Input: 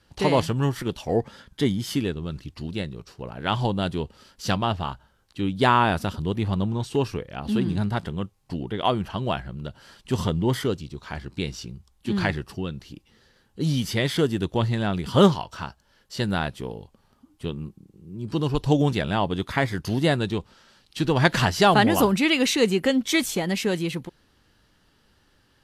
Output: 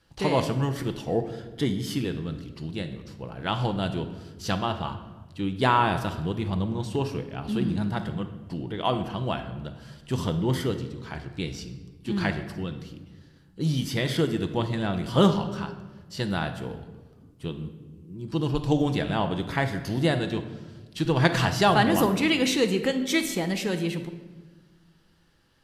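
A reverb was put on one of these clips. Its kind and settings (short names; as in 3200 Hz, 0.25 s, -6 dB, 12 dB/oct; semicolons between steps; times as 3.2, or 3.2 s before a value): shoebox room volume 980 m³, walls mixed, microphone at 0.69 m; gain -3.5 dB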